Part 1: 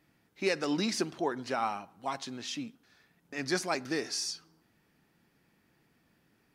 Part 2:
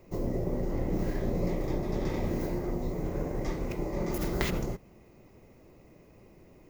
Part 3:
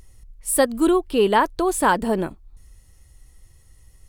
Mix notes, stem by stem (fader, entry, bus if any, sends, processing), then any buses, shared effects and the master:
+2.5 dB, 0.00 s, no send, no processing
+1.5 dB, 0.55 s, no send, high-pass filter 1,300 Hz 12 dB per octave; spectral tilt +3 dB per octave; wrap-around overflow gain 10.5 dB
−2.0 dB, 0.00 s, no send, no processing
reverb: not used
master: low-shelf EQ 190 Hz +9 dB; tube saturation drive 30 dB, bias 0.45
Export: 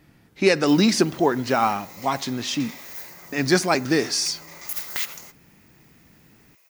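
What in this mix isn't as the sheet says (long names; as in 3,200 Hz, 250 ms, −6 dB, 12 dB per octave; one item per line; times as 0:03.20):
stem 1 +2.5 dB → +10.5 dB
stem 3: muted
master: missing tube saturation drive 30 dB, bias 0.45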